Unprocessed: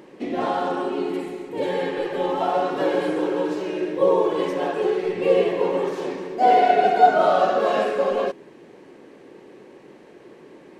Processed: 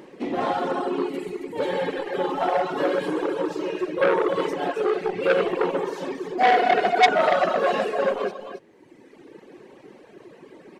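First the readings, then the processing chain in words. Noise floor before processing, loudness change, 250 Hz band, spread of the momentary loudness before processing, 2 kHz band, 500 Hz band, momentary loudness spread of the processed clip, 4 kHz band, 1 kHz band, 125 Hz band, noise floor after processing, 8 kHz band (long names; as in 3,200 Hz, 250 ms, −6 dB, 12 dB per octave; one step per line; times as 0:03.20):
−47 dBFS, −2.0 dB, −2.0 dB, 11 LU, +3.5 dB, −2.0 dB, 12 LU, +2.0 dB, −2.5 dB, −2.0 dB, −51 dBFS, can't be measured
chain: loudspeakers that aren't time-aligned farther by 45 metres −10 dB, 94 metres −6 dB
reverb reduction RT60 1.5 s
saturating transformer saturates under 2,200 Hz
level +1.5 dB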